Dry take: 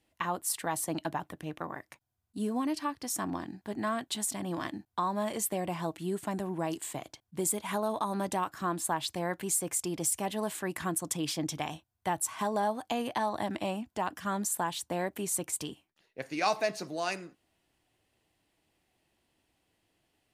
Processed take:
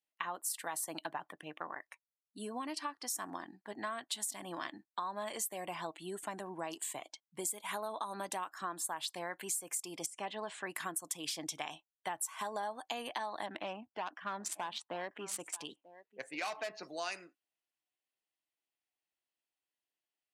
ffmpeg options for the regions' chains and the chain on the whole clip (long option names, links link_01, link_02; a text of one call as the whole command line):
ffmpeg -i in.wav -filter_complex "[0:a]asettb=1/sr,asplit=3[link_01][link_02][link_03];[link_01]atrim=end=10.064[link_04];[link_02]atrim=start=10.06:end=10.66,asetpts=PTS-STARTPTS,afade=type=in:duration=0.004:curve=qsin,afade=type=out:start_time=0.596:duration=0.004:curve=qsin,lowpass=5700,acrossover=split=2500[link_05][link_06];[link_06]acompressor=threshold=-44dB:ratio=4:attack=1:release=60[link_07];[link_05][link_07]amix=inputs=2:normalize=0[link_08];[link_03]atrim=start=10.656[link_09];[link_04][link_08]acrossfade=duration=0.004:curve1=hsin:curve2=qsin[link_10];[link_10][link_09]acrossfade=duration=0.004:curve1=qsin:curve2=hsin,asettb=1/sr,asplit=3[link_11][link_12][link_13];[link_11]atrim=end=13.464[link_14];[link_12]atrim=start=13.46:end=16.83,asetpts=PTS-STARTPTS,afade=type=in:duration=0.004:curve=qsin,afade=type=out:start_time=3.366:duration=0.004:curve=qsin,adynamicsmooth=sensitivity=7.5:basefreq=2200,asoftclip=type=hard:threshold=-26dB,aecho=1:1:940:0.126,atrim=end_sample=148617[link_15];[link_13]atrim=start=16.826[link_16];[link_14][link_15]acrossfade=duration=0.004:curve1=hsin:curve2=qsin[link_17];[link_17][link_16]acrossfade=duration=0.004:curve1=qsin:curve2=hsin,highpass=frequency=1100:poles=1,afftdn=noise_reduction=19:noise_floor=-55,acompressor=threshold=-37dB:ratio=4,volume=1.5dB" out.wav